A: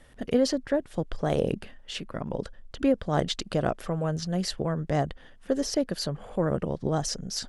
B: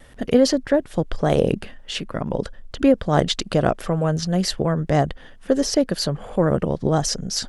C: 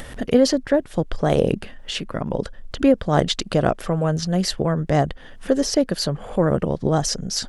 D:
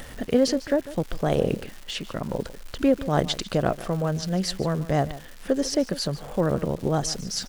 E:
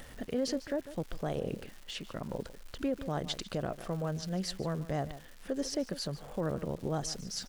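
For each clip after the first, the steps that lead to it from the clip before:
vibrato 0.49 Hz 6.8 cents; gain +7.5 dB
upward compressor, threshold -25 dBFS
crackle 400/s -30 dBFS; echo 0.148 s -16.5 dB; gain -4.5 dB
limiter -14.5 dBFS, peak gain reduction 8 dB; gain -9 dB

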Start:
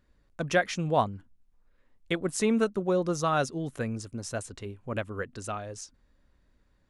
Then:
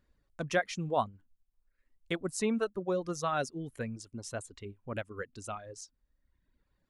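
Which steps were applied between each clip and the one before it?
reverb removal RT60 1.1 s; gain -4.5 dB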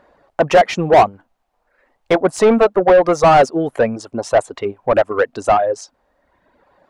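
bell 710 Hz +14.5 dB 1.3 oct; overdrive pedal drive 28 dB, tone 1200 Hz, clips at -4 dBFS; gain +3.5 dB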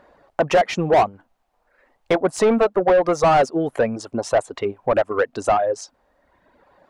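compressor 1.5:1, threshold -22 dBFS, peak gain reduction 6 dB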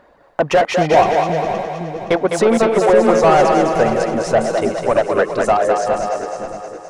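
regenerating reverse delay 0.26 s, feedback 59%, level -8 dB; split-band echo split 390 Hz, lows 0.514 s, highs 0.206 s, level -4.5 dB; gain +2.5 dB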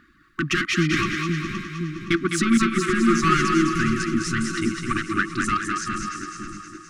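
brick-wall FIR band-stop 370–1100 Hz

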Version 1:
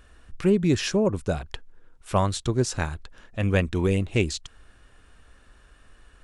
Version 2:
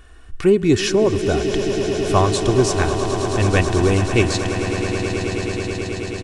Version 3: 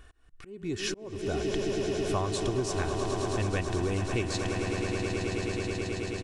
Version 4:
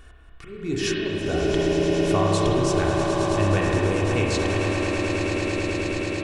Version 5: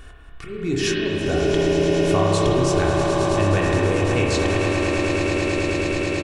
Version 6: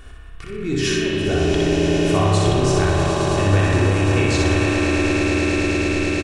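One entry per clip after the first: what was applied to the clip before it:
comb 2.7 ms, depth 42%; swelling echo 0.108 s, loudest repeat 8, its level -12.5 dB; gain +5.5 dB
compressor 5:1, threshold -19 dBFS, peak gain reduction 9 dB; auto swell 0.414 s; gain -7 dB
spring tank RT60 2.6 s, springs 30/37 ms, chirp 65 ms, DRR -3 dB; gain +4.5 dB
in parallel at -1 dB: compressor, threshold -29 dBFS, peak gain reduction 12.5 dB; on the sum: doubler 23 ms -11 dB
feedback echo 61 ms, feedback 51%, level -3 dB

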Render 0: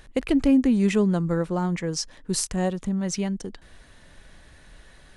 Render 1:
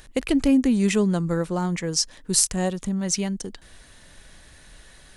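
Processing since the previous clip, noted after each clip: high shelf 4000 Hz +10 dB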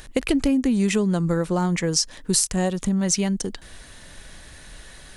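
compressor 6:1, threshold -23 dBFS, peak gain reduction 8.5 dB; gain +5.5 dB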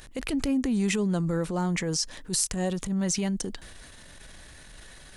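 transient shaper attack -9 dB, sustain +4 dB; gain -4.5 dB

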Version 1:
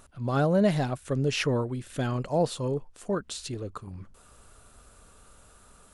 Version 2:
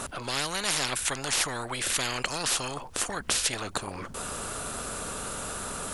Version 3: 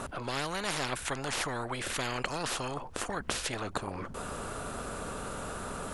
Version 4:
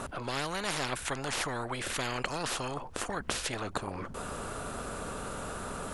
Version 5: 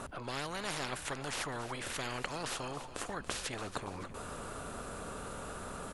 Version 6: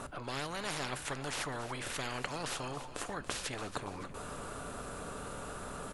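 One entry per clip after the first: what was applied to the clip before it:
spectral compressor 10:1; gain +4 dB
high shelf 2700 Hz -11.5 dB
nothing audible
feedback echo 0.282 s, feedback 54%, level -13.5 dB; gain -5 dB
reverb RT60 0.45 s, pre-delay 7 ms, DRR 14.5 dB

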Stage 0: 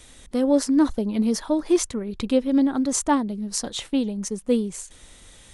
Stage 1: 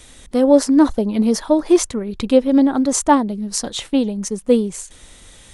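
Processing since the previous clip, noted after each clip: dynamic EQ 680 Hz, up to +5 dB, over -31 dBFS, Q 0.9; gain +4.5 dB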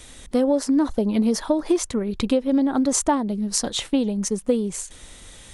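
compressor 10:1, threshold -16 dBFS, peak gain reduction 10.5 dB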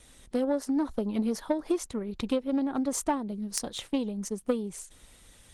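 added harmonics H 3 -13 dB, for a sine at -3.5 dBFS; Opus 20 kbps 48000 Hz

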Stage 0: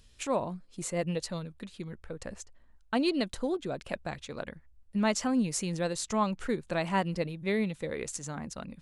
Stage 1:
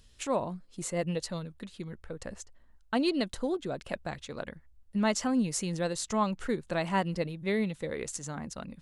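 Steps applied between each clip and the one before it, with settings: notch 2400 Hz, Q 20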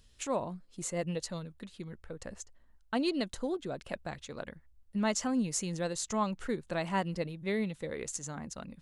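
dynamic EQ 6700 Hz, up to +5 dB, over -54 dBFS, Q 3.6; gain -3 dB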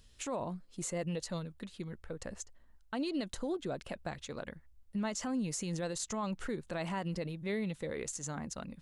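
limiter -29 dBFS, peak gain reduction 10.5 dB; gain +1 dB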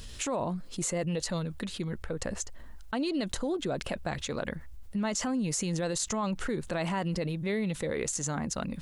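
fast leveller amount 50%; gain +3.5 dB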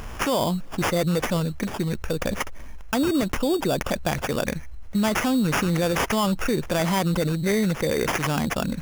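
sample-rate reducer 4100 Hz, jitter 0%; gain +8.5 dB

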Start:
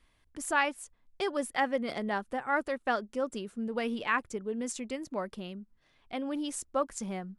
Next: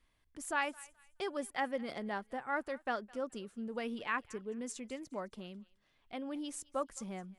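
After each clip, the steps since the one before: thinning echo 0.212 s, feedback 36%, high-pass 1200 Hz, level -20 dB; gain -6.5 dB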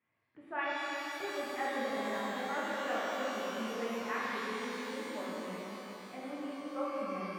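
elliptic band-pass 110–2400 Hz, stop band 40 dB; shimmer reverb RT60 3.8 s, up +12 st, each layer -8 dB, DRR -8 dB; gain -6 dB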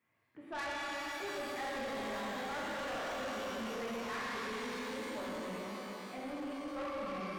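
soft clip -39.5 dBFS, distortion -9 dB; gain +3 dB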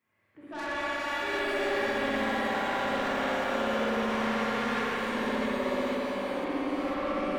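reverse delay 0.496 s, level -1.5 dB; spring tank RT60 3.1 s, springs 59 ms, chirp 70 ms, DRR -7 dB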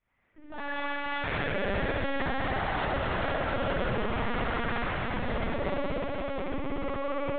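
LPC vocoder at 8 kHz pitch kept

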